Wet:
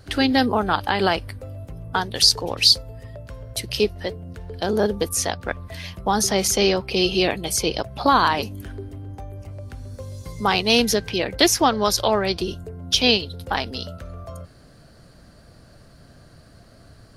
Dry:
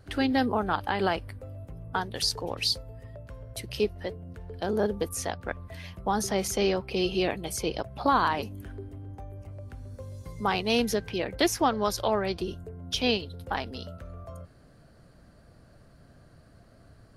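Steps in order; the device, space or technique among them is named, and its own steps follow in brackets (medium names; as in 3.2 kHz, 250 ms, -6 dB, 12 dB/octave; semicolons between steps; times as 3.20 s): presence and air boost (peaking EQ 4.7 kHz +6 dB 1.6 oct; treble shelf 9.4 kHz +4.5 dB); trim +6 dB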